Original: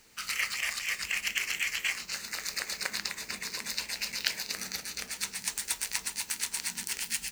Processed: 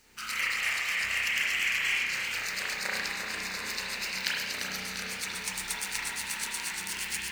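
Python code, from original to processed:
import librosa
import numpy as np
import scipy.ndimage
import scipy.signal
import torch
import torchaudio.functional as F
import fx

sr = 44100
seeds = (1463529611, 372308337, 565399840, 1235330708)

y = fx.rev_spring(x, sr, rt60_s=1.1, pass_ms=(32,), chirp_ms=50, drr_db=-5.5)
y = fx.echo_warbled(y, sr, ms=346, feedback_pct=62, rate_hz=2.8, cents=63, wet_db=-7.5)
y = F.gain(torch.from_numpy(y), -3.0).numpy()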